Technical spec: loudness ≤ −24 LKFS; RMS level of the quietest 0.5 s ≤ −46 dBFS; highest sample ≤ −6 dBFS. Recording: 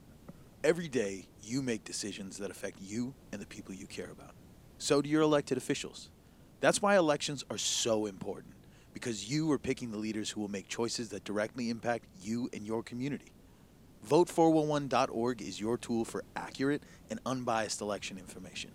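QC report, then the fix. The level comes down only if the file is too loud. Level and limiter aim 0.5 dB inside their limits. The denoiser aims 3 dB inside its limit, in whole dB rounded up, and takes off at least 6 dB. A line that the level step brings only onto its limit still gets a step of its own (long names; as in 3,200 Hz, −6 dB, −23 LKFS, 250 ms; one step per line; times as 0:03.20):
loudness −33.5 LKFS: in spec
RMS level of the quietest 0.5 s −58 dBFS: in spec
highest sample −11.5 dBFS: in spec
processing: no processing needed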